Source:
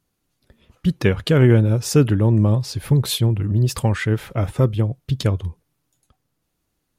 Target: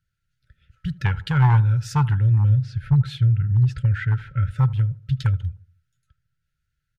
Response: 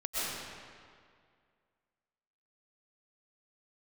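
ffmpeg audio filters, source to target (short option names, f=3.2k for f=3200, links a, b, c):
-filter_complex "[0:a]asettb=1/sr,asplit=3[a][b][c];[a]atrim=end=2.494[d];[b]atrim=start=2.49:end=4.51,asetpts=PTS-STARTPTS,afade=t=in:d=0.004:c=qsin,afade=t=out:st=2.016:d=0.004:c=qsin,aemphasis=mode=reproduction:type=75fm[e];[c]atrim=start=4.506[f];[d][e]acrossfade=d=0.004:c1=hsin:c2=qsin[g];[g][f]acrossfade=d=0.004:c1=qsin:c2=hsin,afftfilt=real='re*(1-between(b*sr/4096,600,1300))':imag='im*(1-between(b*sr/4096,600,1300))':win_size=4096:overlap=0.75,volume=9dB,asoftclip=hard,volume=-9dB,firequalizer=gain_entry='entry(140,0);entry(240,-26);entry(350,-23);entry(550,-20);entry(850,11);entry(1300,2);entry(2200,-6);entry(11000,-18)':delay=0.05:min_phase=1,asplit=2[h][i];[i]adelay=77,lowpass=f=1.2k:p=1,volume=-19.5dB,asplit=2[j][k];[k]adelay=77,lowpass=f=1.2k:p=1,volume=0.5,asplit=2[l][m];[m]adelay=77,lowpass=f=1.2k:p=1,volume=0.5,asplit=2[n][o];[o]adelay=77,lowpass=f=1.2k:p=1,volume=0.5[p];[h][j][l][n][p]amix=inputs=5:normalize=0"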